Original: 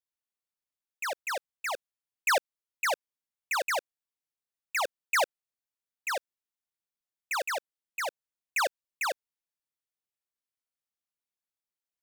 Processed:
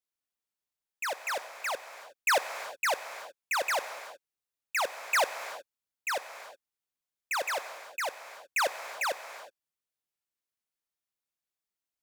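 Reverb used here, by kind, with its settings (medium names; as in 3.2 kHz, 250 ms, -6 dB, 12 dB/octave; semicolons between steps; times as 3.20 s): gated-style reverb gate 390 ms flat, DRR 10 dB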